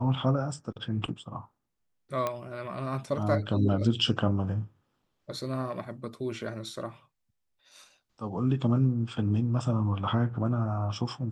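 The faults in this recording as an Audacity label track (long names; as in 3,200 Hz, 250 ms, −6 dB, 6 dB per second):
2.270000	2.270000	click −16 dBFS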